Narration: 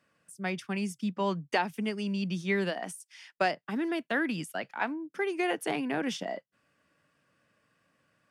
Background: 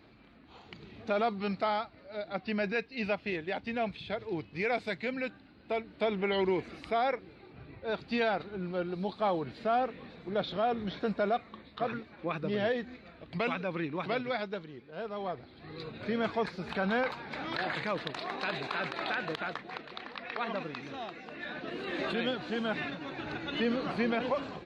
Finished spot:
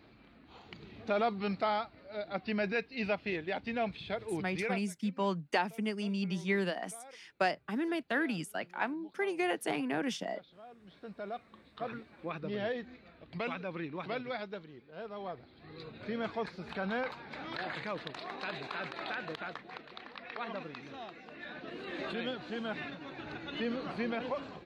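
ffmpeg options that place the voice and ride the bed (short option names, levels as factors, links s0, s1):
-filter_complex "[0:a]adelay=4000,volume=0.75[s0];[1:a]volume=7.08,afade=t=out:st=4.55:d=0.33:silence=0.0794328,afade=t=in:st=10.8:d=1.21:silence=0.125893[s1];[s0][s1]amix=inputs=2:normalize=0"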